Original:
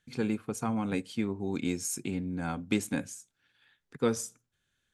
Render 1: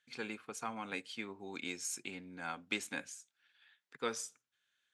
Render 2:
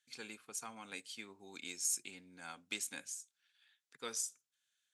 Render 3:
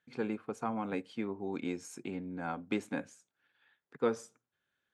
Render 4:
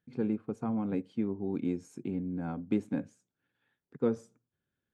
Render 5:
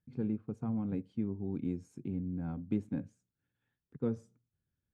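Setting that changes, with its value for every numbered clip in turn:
band-pass, frequency: 2600, 6800, 810, 280, 100 Hz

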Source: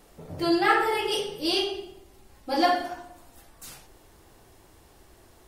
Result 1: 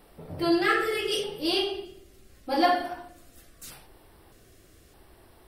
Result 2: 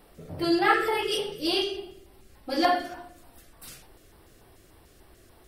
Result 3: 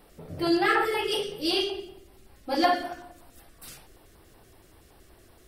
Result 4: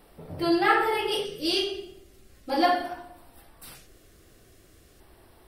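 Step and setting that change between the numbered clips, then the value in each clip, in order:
LFO notch, rate: 0.81, 3.4, 5.3, 0.4 Hz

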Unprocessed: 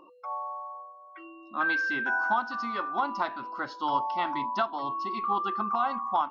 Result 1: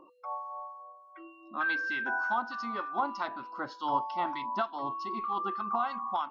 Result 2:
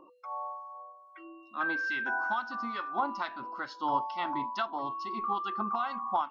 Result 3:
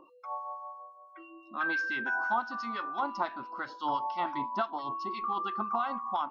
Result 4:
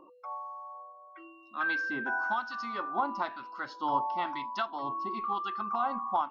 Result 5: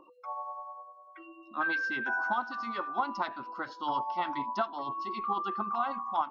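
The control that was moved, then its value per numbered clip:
harmonic tremolo, rate: 3.3, 2.3, 5.9, 1, 10 Hz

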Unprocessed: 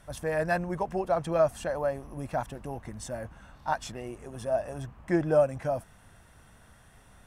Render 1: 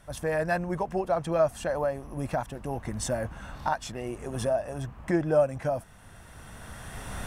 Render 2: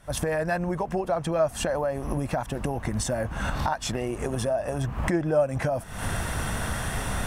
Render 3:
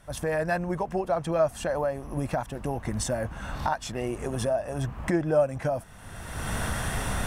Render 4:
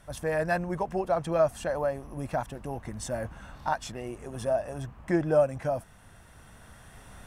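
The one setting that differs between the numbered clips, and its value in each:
recorder AGC, rising by: 13, 82, 32, 5.1 dB/s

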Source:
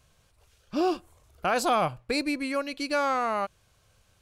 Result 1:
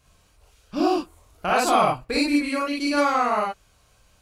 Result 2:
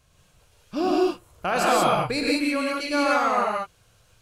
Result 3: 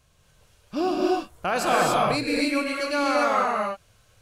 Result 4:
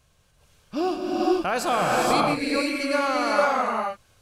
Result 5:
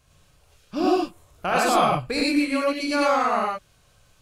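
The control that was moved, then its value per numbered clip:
non-linear reverb, gate: 80, 210, 310, 510, 130 ms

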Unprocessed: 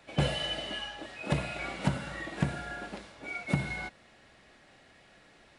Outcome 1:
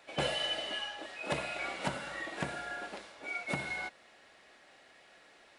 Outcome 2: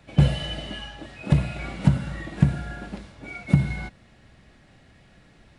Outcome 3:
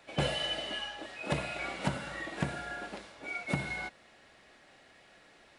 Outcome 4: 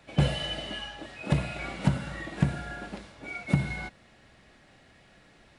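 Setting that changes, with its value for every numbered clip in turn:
tone controls, bass: -15, +14, -6, +6 dB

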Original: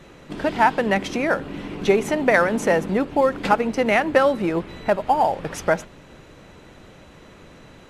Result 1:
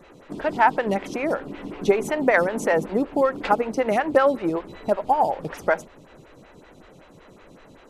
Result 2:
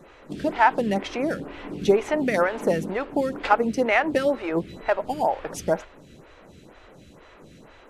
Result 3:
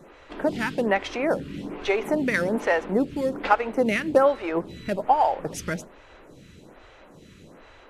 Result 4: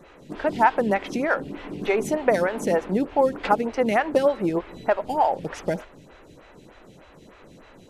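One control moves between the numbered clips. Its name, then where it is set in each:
photocell phaser, rate: 5.3, 2.1, 1.2, 3.3 Hz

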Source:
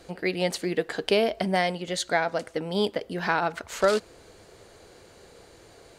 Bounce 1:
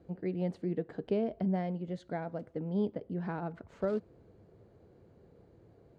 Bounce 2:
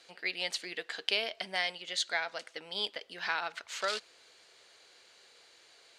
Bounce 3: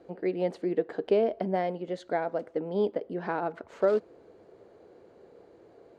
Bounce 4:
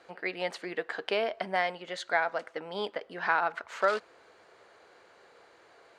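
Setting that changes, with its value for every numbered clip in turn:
band-pass, frequency: 140, 3500, 380, 1300 Hz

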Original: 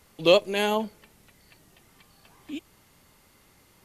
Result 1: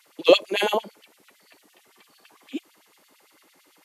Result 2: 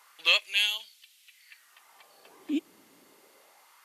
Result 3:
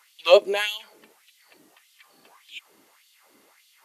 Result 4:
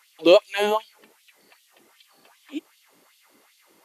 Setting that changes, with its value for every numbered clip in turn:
LFO high-pass, rate: 8.9, 0.27, 1.7, 2.6 Hz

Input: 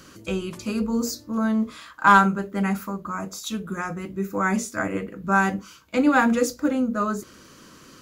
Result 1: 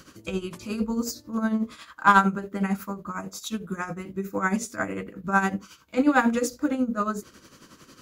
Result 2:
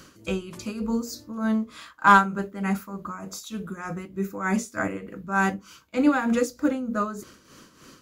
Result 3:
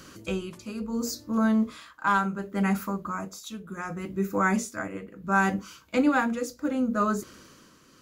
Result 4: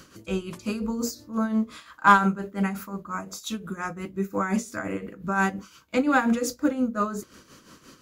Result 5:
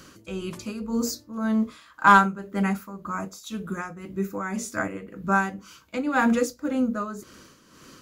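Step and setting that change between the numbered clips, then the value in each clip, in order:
tremolo, rate: 11, 3.3, 0.7, 5.7, 1.9 Hz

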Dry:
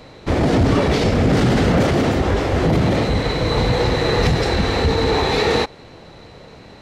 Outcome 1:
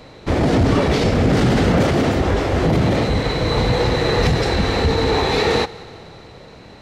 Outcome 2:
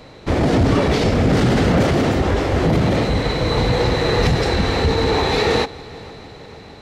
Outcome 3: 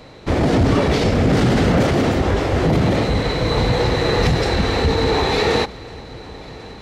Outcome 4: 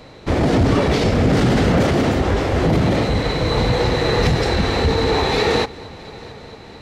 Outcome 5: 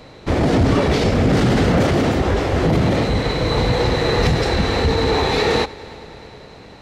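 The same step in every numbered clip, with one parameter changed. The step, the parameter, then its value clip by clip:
multi-head echo, time: 61, 152, 363, 224, 103 ms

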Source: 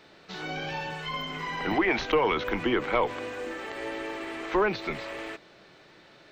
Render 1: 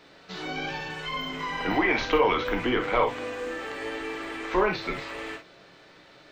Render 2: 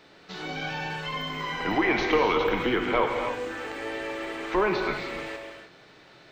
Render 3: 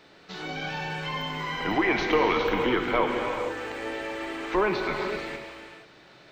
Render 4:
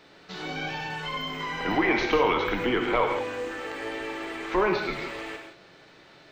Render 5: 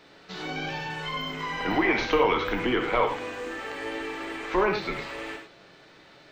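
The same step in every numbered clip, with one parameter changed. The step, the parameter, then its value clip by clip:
non-linear reverb, gate: 80, 340, 510, 200, 130 ms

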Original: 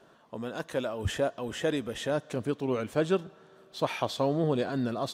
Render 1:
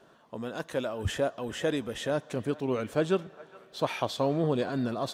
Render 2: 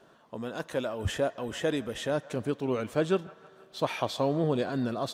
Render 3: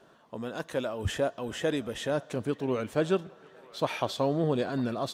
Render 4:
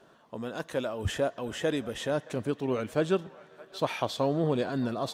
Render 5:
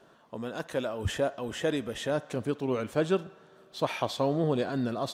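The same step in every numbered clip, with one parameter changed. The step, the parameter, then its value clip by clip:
band-limited delay, time: 415, 158, 951, 620, 60 ms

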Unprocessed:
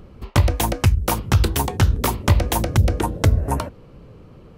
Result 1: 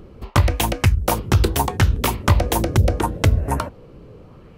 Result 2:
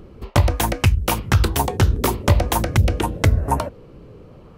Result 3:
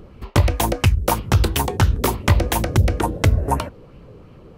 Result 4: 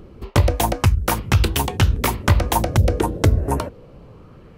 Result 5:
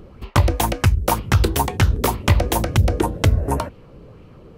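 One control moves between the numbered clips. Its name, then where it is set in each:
LFO bell, rate: 0.75, 0.5, 2.9, 0.3, 2 Hz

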